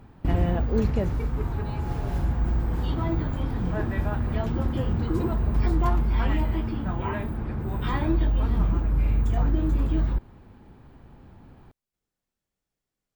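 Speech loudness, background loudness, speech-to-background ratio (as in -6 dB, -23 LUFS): -30.5 LUFS, -27.0 LUFS, -3.5 dB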